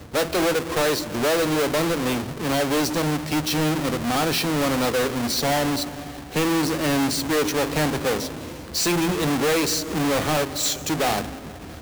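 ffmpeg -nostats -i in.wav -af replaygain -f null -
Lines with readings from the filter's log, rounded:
track_gain = +4.5 dB
track_peak = 0.081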